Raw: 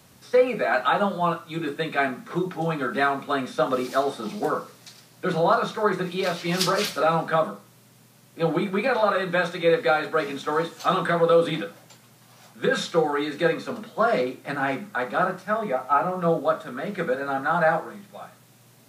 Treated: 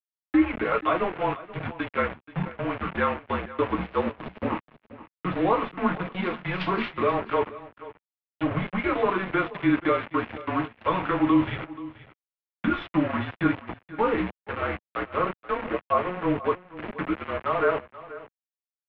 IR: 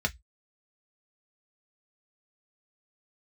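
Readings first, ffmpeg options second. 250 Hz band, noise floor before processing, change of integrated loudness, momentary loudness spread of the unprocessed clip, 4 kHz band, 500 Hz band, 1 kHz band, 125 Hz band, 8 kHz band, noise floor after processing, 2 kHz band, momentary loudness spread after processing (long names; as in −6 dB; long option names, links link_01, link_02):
+3.0 dB, −54 dBFS, −3.0 dB, 8 LU, −8.5 dB, −5.5 dB, −3.5 dB, −1.0 dB, below −35 dB, below −85 dBFS, −4.0 dB, 9 LU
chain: -filter_complex "[0:a]aemphasis=mode=production:type=75kf,agate=range=-33dB:threshold=-31dB:ratio=3:detection=peak,lowshelf=frequency=210:gain=10,aeval=exprs='val(0)*gte(abs(val(0)),0.075)':channel_layout=same,asplit=2[link_01][link_02];[link_02]aecho=0:1:481:0.141[link_03];[link_01][link_03]amix=inputs=2:normalize=0,highpass=frequency=290:width_type=q:width=0.5412,highpass=frequency=290:width_type=q:width=1.307,lowpass=frequency=2900:width_type=q:width=0.5176,lowpass=frequency=2900:width_type=q:width=0.7071,lowpass=frequency=2900:width_type=q:width=1.932,afreqshift=-190,volume=-3.5dB"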